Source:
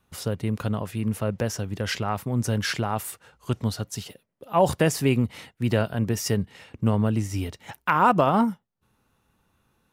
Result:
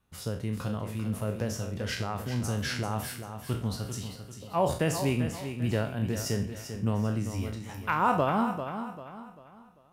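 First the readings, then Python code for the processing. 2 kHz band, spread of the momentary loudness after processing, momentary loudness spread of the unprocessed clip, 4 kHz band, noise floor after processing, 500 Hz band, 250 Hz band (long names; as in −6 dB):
−5.0 dB, 11 LU, 12 LU, −5.0 dB, −53 dBFS, −5.5 dB, −5.5 dB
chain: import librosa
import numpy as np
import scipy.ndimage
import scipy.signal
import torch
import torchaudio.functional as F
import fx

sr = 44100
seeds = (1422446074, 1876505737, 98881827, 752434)

p1 = fx.spec_trails(x, sr, decay_s=0.43)
p2 = fx.low_shelf(p1, sr, hz=130.0, db=4.5)
p3 = p2 + fx.echo_feedback(p2, sr, ms=394, feedback_pct=37, wet_db=-9, dry=0)
y = F.gain(torch.from_numpy(p3), -8.0).numpy()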